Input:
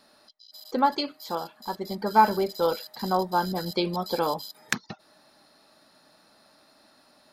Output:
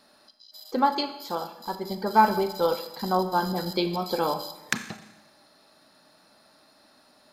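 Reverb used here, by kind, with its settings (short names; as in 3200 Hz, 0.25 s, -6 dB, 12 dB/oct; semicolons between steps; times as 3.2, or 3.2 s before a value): Schroeder reverb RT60 0.95 s, combs from 29 ms, DRR 9.5 dB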